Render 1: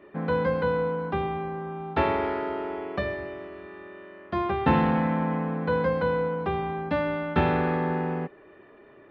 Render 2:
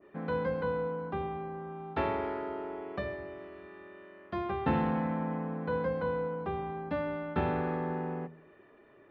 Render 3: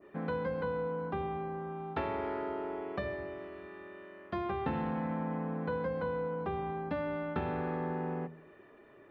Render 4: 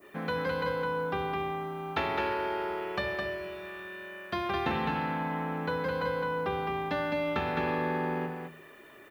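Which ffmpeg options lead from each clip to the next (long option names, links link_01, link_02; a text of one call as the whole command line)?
ffmpeg -i in.wav -af "bandreject=frequency=80.6:width_type=h:width=4,bandreject=frequency=161.2:width_type=h:width=4,bandreject=frequency=241.8:width_type=h:width=4,bandreject=frequency=322.4:width_type=h:width=4,bandreject=frequency=403:width_type=h:width=4,bandreject=frequency=483.6:width_type=h:width=4,bandreject=frequency=564.2:width_type=h:width=4,bandreject=frequency=644.8:width_type=h:width=4,bandreject=frequency=725.4:width_type=h:width=4,bandreject=frequency=806:width_type=h:width=4,bandreject=frequency=886.6:width_type=h:width=4,bandreject=frequency=967.2:width_type=h:width=4,bandreject=frequency=1047.8:width_type=h:width=4,adynamicequalizer=threshold=0.00891:dfrequency=1600:dqfactor=0.7:tfrequency=1600:tqfactor=0.7:attack=5:release=100:ratio=0.375:range=3:mode=cutabove:tftype=highshelf,volume=-6.5dB" out.wav
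ffmpeg -i in.wav -af "acompressor=threshold=-33dB:ratio=4,volume=1.5dB" out.wav
ffmpeg -i in.wav -af "crystalizer=i=9:c=0,aecho=1:1:211:0.631" out.wav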